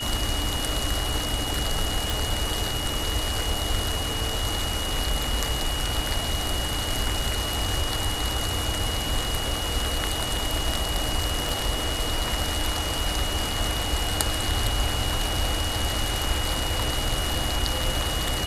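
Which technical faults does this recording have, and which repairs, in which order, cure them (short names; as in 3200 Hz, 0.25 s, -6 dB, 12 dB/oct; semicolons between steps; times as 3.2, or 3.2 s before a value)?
tone 2900 Hz -31 dBFS
2.1 pop
11.49 pop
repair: de-click; notch 2900 Hz, Q 30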